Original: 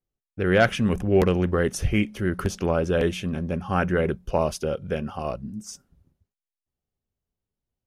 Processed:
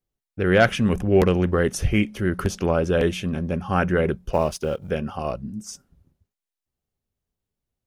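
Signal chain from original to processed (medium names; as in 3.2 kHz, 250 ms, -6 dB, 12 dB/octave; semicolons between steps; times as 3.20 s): 4.32–4.91 s: companding laws mixed up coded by A; trim +2 dB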